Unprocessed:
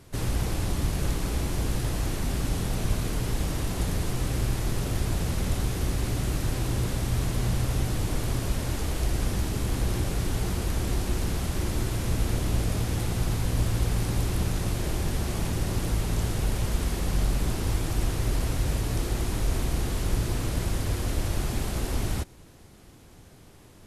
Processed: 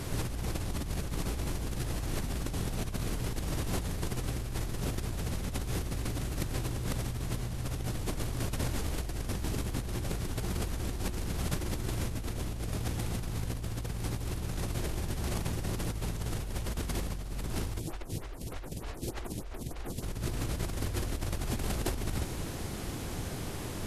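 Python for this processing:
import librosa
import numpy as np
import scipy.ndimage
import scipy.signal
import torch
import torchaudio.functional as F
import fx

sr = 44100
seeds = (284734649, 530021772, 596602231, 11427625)

y = fx.over_compress(x, sr, threshold_db=-37.0, ratio=-1.0)
y = fx.stagger_phaser(y, sr, hz=3.3, at=(17.78, 20.02), fade=0.02)
y = y * librosa.db_to_amplitude(3.5)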